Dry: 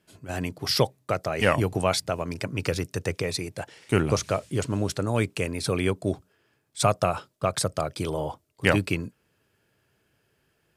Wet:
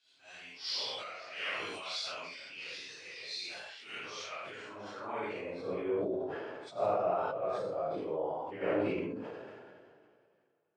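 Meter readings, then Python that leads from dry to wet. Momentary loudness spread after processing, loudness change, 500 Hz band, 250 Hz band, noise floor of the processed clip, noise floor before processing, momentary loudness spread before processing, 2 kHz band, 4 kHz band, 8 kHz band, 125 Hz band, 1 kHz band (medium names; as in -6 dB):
13 LU, -10.0 dB, -8.0 dB, -12.0 dB, -70 dBFS, -71 dBFS, 9 LU, -10.5 dB, -7.5 dB, -18.5 dB, -24.0 dB, -8.0 dB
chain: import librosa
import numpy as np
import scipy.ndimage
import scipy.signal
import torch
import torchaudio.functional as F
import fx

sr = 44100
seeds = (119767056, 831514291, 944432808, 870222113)

y = fx.phase_scramble(x, sr, seeds[0], window_ms=200)
y = scipy.signal.sosfilt(scipy.signal.butter(2, 5400.0, 'lowpass', fs=sr, output='sos'), y)
y = fx.low_shelf(y, sr, hz=120.0, db=-8.5)
y = fx.filter_sweep_bandpass(y, sr, from_hz=3800.0, to_hz=540.0, start_s=3.97, end_s=5.73, q=1.4)
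y = fx.room_early_taps(y, sr, ms=(50, 69), db=(-9.0, -11.0))
y = fx.sustainer(y, sr, db_per_s=27.0)
y = y * 10.0 ** (-5.0 / 20.0)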